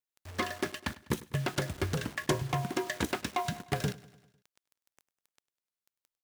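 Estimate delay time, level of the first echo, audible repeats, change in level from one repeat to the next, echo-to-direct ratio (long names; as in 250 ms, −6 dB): 100 ms, −20.0 dB, 4, −5.0 dB, −18.5 dB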